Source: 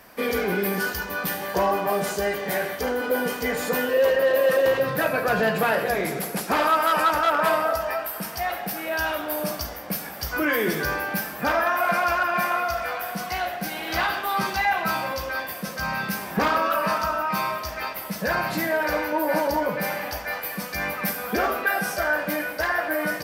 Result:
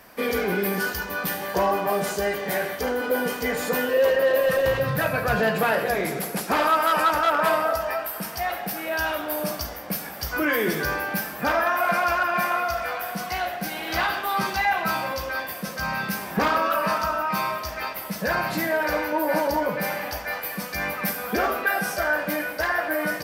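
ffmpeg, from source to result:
-filter_complex "[0:a]asplit=3[a][b][c];[a]afade=t=out:st=4.4:d=0.02[d];[b]asubboost=boost=6.5:cutoff=120,afade=t=in:st=4.4:d=0.02,afade=t=out:st=5.35:d=0.02[e];[c]afade=t=in:st=5.35:d=0.02[f];[d][e][f]amix=inputs=3:normalize=0"

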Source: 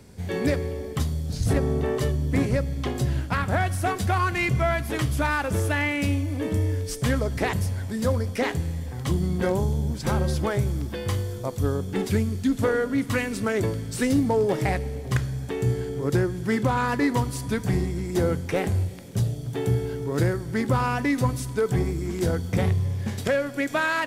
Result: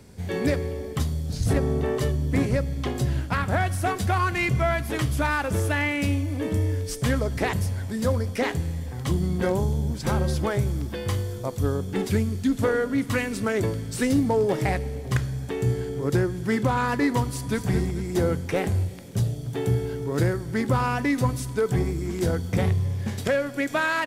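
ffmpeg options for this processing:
-filter_complex "[0:a]asplit=2[a][b];[b]afade=t=in:st=17.27:d=0.01,afade=t=out:st=17.68:d=0.01,aecho=0:1:220|440|660|880:0.334965|0.133986|0.0535945|0.0214378[c];[a][c]amix=inputs=2:normalize=0"

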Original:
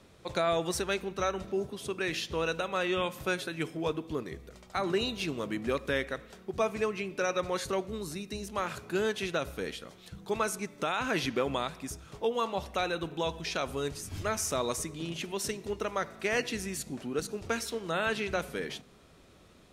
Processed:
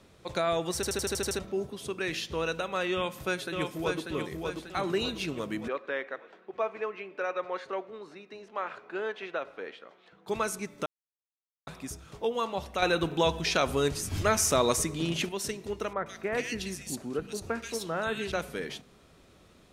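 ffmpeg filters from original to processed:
-filter_complex "[0:a]asplit=2[a][b];[b]afade=t=in:st=2.93:d=0.01,afade=t=out:st=4.09:d=0.01,aecho=0:1:590|1180|1770|2360|2950|3540:0.630957|0.315479|0.157739|0.0788697|0.0394348|0.0197174[c];[a][c]amix=inputs=2:normalize=0,asplit=3[d][e][f];[d]afade=t=out:st=5.67:d=0.02[g];[e]highpass=460,lowpass=2.1k,afade=t=in:st=5.67:d=0.02,afade=t=out:st=10.26:d=0.02[h];[f]afade=t=in:st=10.26:d=0.02[i];[g][h][i]amix=inputs=3:normalize=0,asettb=1/sr,asplit=3[j][k][l];[j]atrim=end=12.824[m];[k]atrim=start=12.82:end=15.29,asetpts=PTS-STARTPTS,afade=t=in:d=0.004:c=qsin,afade=t=out:st=2.466:d=0.004:c=qsin,acontrast=68[n];[l]atrim=start=15.286[o];[m][n]acrossfade=d=0.004:c1=hsin:c2=qsin[p];[p][o]acrossfade=d=0.004:c1=qsin:c2=hsin,asettb=1/sr,asplit=3[q][r][s];[q]atrim=end=15.934[t];[r]atrim=start=15.93:end=18.32,asetpts=PTS-STARTPTS,afade=t=in:d=0.004:c=qsin,afade=t=out:st=2.386:d=0.004:c=qsin,acrossover=split=2100[u][v];[v]adelay=130[w];[u][w]amix=inputs=2:normalize=0,atrim=end_sample=105399[x];[s]atrim=start=18.316[y];[t][x]acrossfade=d=0.004:c1=hsin:c2=qsin[z];[z][y]acrossfade=d=0.004:c1=qsin:c2=hsin,asplit=11[aa][ab][ac][ad][ae][af][ag][ah][ai][aj][ak];[aa]atrim=end=0.832[al];[ab]atrim=start=0.748:end=0.832[am];[ac]atrim=start=0.748:end=0.832[an];[ad]atrim=start=0.748:end=0.832[ao];[ae]atrim=start=0.748:end=0.832[ap];[af]atrim=start=0.748:end=0.832[aq];[ag]atrim=start=0.748:end=0.832[ar];[ah]atrim=start=0.748:end=0.832[as];[ai]atrim=start=1.388:end=10.86,asetpts=PTS-STARTPTS,afade=t=out:st=9.468:d=0.004:c=hsin[at];[aj]atrim=start=10.86:end=11.67,asetpts=PTS-STARTPTS,volume=0[au];[ak]atrim=start=11.67,asetpts=PTS-STARTPTS,afade=t=in:d=0.004:c=hsin[av];[al][am]acrossfade=d=0.004:c1=hsin:c2=hsin[aw];[aw][an]acrossfade=d=0.004:c1=hsin:c2=hsin[ax];[ax][ao]acrossfade=d=0.004:c1=hsin:c2=hsin[ay];[ay][ap]acrossfade=d=0.004:c1=hsin:c2=hsin[az];[az][aq]acrossfade=d=0.004:c1=hsin:c2=hsin[ba];[ba][ar]acrossfade=d=0.004:c1=hsin:c2=hsin[bb];[bb][as]acrossfade=d=0.004:c1=hsin:c2=hsin[bc];[at][au][av]concat=n=3:v=0:a=1[bd];[bc][bd]acrossfade=d=0.004:c1=hsin:c2=hsin"

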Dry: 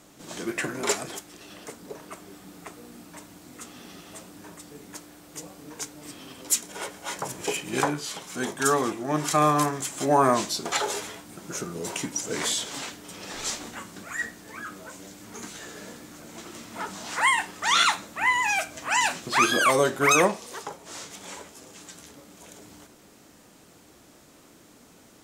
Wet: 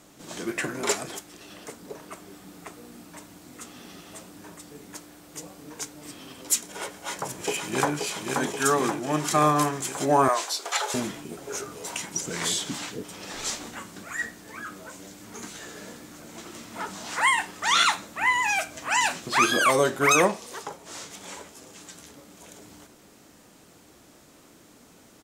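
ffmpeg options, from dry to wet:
-filter_complex "[0:a]asplit=2[a][b];[b]afade=t=in:st=6.91:d=0.01,afade=t=out:st=7.93:d=0.01,aecho=0:1:530|1060|1590|2120|2650|3180|3710|4240|4770|5300|5830|6360:0.630957|0.44167|0.309169|0.216418|0.151493|0.106045|0.0742315|0.0519621|0.0363734|0.0254614|0.017823|0.0124761[c];[a][c]amix=inputs=2:normalize=0,asettb=1/sr,asplit=3[d][e][f];[d]atrim=end=10.284[g];[e]atrim=start=10.28:end=13.03,asetpts=PTS-STARTPTS,afade=t=in:d=0.004:c=qsin,afade=t=out:st=2.746:d=0.004:c=qsin,acrossover=split=460[h][i];[h]adelay=660[j];[j][i]amix=inputs=2:normalize=0,atrim=end_sample=121275[k];[f]atrim=start=13.026[l];[g][k]acrossfade=d=0.004:c1=hsin:c2=qsin[m];[m][l]acrossfade=d=0.004:c1=qsin:c2=hsin"

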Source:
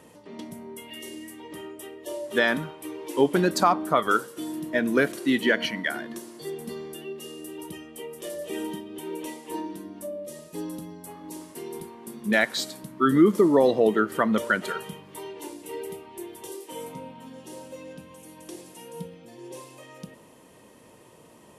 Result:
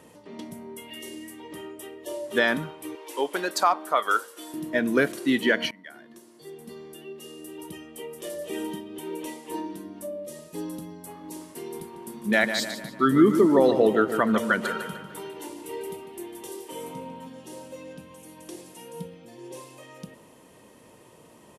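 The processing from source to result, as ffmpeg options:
-filter_complex "[0:a]asettb=1/sr,asplit=3[a][b][c];[a]atrim=end=2.954[d];[b]atrim=start=2.95:end=4.54,asetpts=PTS-STARTPTS,afade=t=in:d=0.004:c=qsin,afade=t=out:st=1.586:d=0.004:c=qsin,highpass=570[e];[c]atrim=start=4.536[f];[d][e]acrossfade=d=0.004:c1=hsin:c2=qsin[g];[g][f]acrossfade=d=0.004:c1=qsin:c2=hsin,asplit=3[h][i][j];[h]afade=t=out:st=11.92:d=0.02[k];[i]asplit=2[l][m];[m]adelay=149,lowpass=f=4.4k:p=1,volume=-8.5dB,asplit=2[n][o];[o]adelay=149,lowpass=f=4.4k:p=1,volume=0.51,asplit=2[p][q];[q]adelay=149,lowpass=f=4.4k:p=1,volume=0.51,asplit=2[r][s];[s]adelay=149,lowpass=f=4.4k:p=1,volume=0.51,asplit=2[t][u];[u]adelay=149,lowpass=f=4.4k:p=1,volume=0.51,asplit=2[v][w];[w]adelay=149,lowpass=f=4.4k:p=1,volume=0.51[x];[l][n][p][r][t][v][x]amix=inputs=7:normalize=0,afade=t=in:st=11.92:d=0.02,afade=t=out:st=17.27:d=0.02[y];[j]afade=t=in:st=17.27:d=0.02[z];[k][y][z]amix=inputs=3:normalize=0,asplit=2[aa][ab];[aa]atrim=end=5.71,asetpts=PTS-STARTPTS,afade=t=out:st=5.706:d=0.004:c=hsin:silence=0.0841395[ac];[ab]atrim=start=5.71,asetpts=PTS-STARTPTS,afade=t=in:d=2.31:silence=0.0841395[ad];[ac][ad]concat=n=2:v=0:a=1"

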